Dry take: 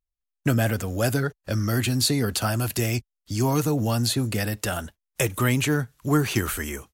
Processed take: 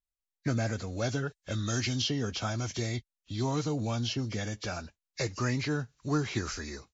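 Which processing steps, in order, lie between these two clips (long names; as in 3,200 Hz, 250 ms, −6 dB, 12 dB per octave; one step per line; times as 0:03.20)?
hearing-aid frequency compression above 1,600 Hz 1.5 to 1
0:01.27–0:02.02: high-shelf EQ 2,700 Hz +8.5 dB
level −8 dB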